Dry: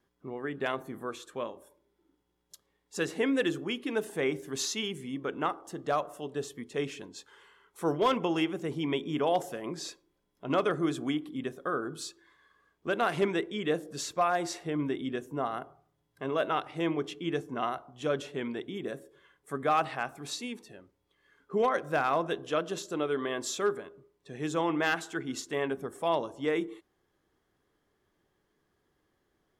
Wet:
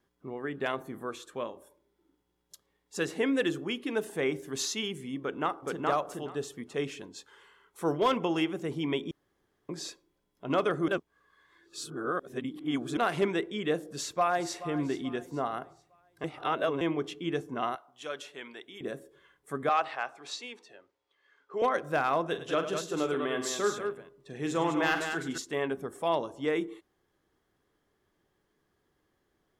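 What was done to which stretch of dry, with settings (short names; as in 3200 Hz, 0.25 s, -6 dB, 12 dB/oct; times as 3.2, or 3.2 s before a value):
5.2–5.86 echo throw 0.42 s, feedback 15%, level -1 dB
9.11–9.69 room tone
10.88–12.97 reverse
13.82–14.66 echo throw 0.43 s, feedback 40%, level -14.5 dB
16.24–16.81 reverse
17.75–18.81 HPF 1400 Hz 6 dB/oct
19.69–21.62 three-band isolator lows -19 dB, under 400 Hz, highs -20 dB, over 7200 Hz
22.28–25.38 tapped delay 43/103/202 ms -9.5/-12/-6.5 dB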